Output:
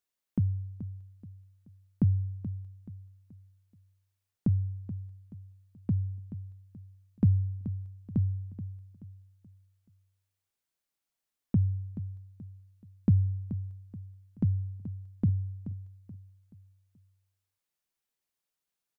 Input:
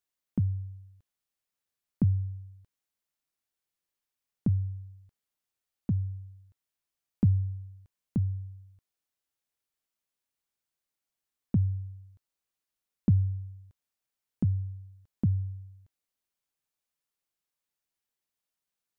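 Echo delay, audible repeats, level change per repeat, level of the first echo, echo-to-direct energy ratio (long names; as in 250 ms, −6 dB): 429 ms, 3, −8.5 dB, −12.5 dB, −12.0 dB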